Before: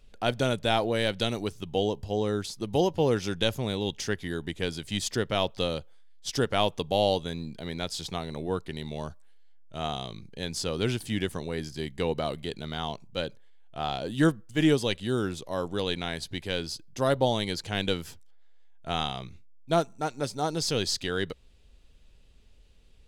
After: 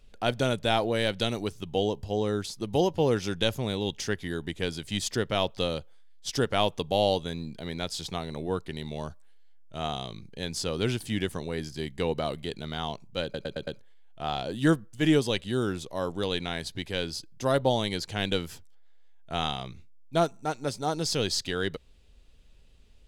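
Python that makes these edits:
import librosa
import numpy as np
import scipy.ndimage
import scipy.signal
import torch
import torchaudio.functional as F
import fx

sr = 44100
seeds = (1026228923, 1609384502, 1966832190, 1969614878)

y = fx.edit(x, sr, fx.stutter(start_s=13.23, slice_s=0.11, count=5), tone=tone)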